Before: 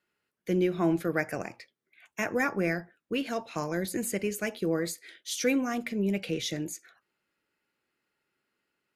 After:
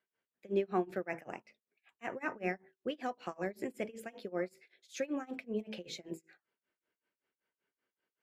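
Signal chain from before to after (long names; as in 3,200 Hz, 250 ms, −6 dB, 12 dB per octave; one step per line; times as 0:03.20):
low-pass filter 1,600 Hz 6 dB per octave
low-shelf EQ 140 Hz −9.5 dB
mains-hum notches 50/100/150/200/250/300/350/400/450 Hz
amplitude tremolo 4.8 Hz, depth 96%
wrong playback speed 44.1 kHz file played as 48 kHz
level −1.5 dB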